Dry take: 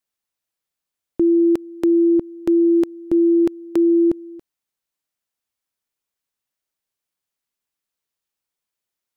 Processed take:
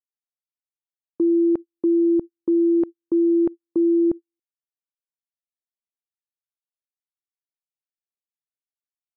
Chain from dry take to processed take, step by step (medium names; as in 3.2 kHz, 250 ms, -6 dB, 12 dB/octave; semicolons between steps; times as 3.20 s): low-pass that closes with the level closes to 1.1 kHz, closed at -15 dBFS; gate -22 dBFS, range -52 dB; trim -3 dB